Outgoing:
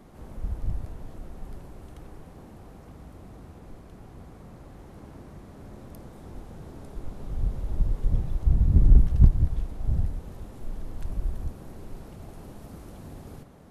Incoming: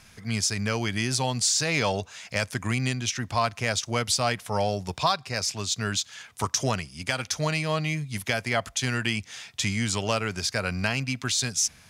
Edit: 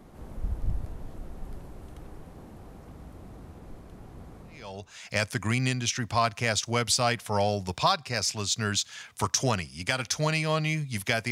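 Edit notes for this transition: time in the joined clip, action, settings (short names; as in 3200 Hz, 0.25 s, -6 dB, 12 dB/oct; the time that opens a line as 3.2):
outgoing
4.75 switch to incoming from 1.95 s, crossfade 0.72 s quadratic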